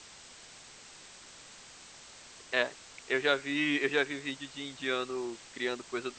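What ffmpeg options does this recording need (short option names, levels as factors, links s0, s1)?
-af "afwtdn=0.004"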